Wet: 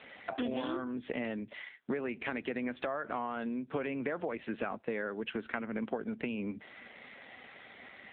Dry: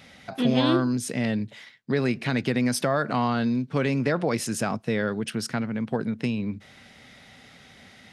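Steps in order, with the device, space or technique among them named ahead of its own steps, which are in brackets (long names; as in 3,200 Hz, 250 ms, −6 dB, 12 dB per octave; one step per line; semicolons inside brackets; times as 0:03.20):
voicemail (band-pass filter 320–3,300 Hz; downward compressor 12 to 1, threshold −35 dBFS, peak gain reduction 16 dB; level +4 dB; AMR narrowband 7.4 kbit/s 8,000 Hz)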